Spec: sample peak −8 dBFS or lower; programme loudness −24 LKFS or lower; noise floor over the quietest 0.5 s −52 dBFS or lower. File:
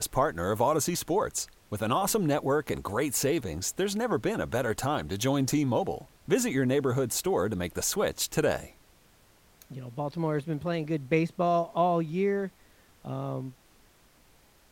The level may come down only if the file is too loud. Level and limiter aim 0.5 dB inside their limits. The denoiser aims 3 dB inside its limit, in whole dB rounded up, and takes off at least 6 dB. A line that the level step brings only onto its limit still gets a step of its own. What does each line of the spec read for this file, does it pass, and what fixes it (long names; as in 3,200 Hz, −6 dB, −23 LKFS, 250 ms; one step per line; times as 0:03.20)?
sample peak −11.5 dBFS: in spec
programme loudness −29.0 LKFS: in spec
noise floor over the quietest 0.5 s −60 dBFS: in spec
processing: no processing needed